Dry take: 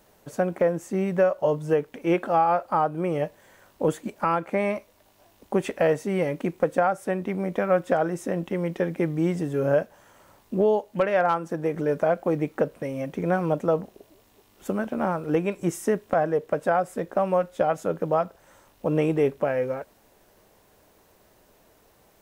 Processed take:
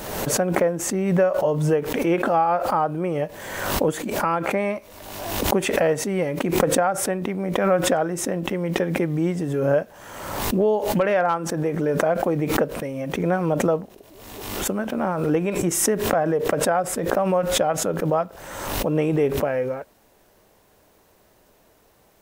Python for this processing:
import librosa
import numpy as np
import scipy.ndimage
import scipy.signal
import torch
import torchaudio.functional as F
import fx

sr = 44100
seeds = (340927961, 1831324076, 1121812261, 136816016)

y = fx.pre_swell(x, sr, db_per_s=42.0)
y = y * 10.0 ** (1.0 / 20.0)